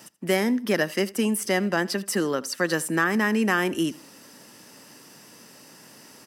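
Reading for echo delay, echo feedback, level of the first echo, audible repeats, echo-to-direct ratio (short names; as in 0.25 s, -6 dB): 81 ms, 34%, -21.5 dB, 2, -21.0 dB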